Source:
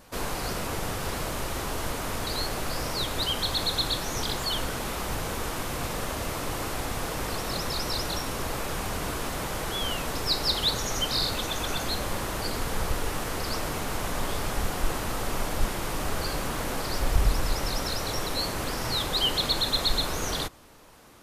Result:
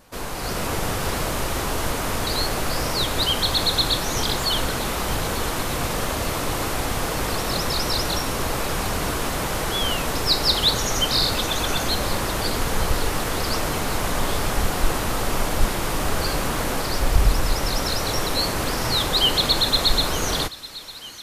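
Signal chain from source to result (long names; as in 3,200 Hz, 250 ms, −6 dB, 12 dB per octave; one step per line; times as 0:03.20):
automatic gain control gain up to 6.5 dB
on a send: delay with a high-pass on its return 902 ms, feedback 72%, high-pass 1,700 Hz, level −17 dB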